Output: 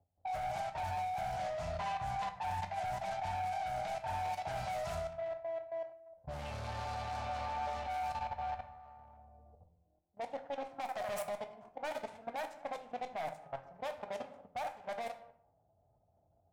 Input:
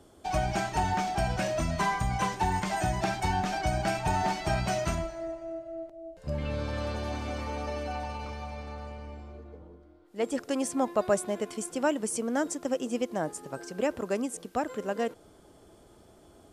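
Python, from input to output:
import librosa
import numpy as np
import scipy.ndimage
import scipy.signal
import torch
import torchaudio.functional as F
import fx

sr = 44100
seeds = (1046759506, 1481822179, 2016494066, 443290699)

p1 = fx.self_delay(x, sr, depth_ms=0.35)
p2 = fx.quant_dither(p1, sr, seeds[0], bits=6, dither='none')
p3 = p1 + (p2 * librosa.db_to_amplitude(-3.5))
p4 = fx.curve_eq(p3, sr, hz=(110.0, 370.0, 730.0, 1100.0), db=(0, -24, 6, -7))
p5 = p4 + fx.echo_thinned(p4, sr, ms=77, feedback_pct=54, hz=220.0, wet_db=-11, dry=0)
p6 = fx.rider(p5, sr, range_db=3, speed_s=2.0)
p7 = fx.env_lowpass(p6, sr, base_hz=410.0, full_db=-21.5)
p8 = scipy.signal.sosfilt(scipy.signal.butter(2, 81.0, 'highpass', fs=sr, output='sos'), p7)
p9 = 10.0 ** (-26.0 / 20.0) * np.tanh(p8 / 10.0 ** (-26.0 / 20.0))
p10 = fx.level_steps(p9, sr, step_db=17)
p11 = fx.low_shelf(p10, sr, hz=320.0, db=-4.0)
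p12 = fx.room_shoebox(p11, sr, seeds[1], volume_m3=71.0, walls='mixed', distance_m=0.32)
y = p12 * librosa.db_to_amplitude(-3.5)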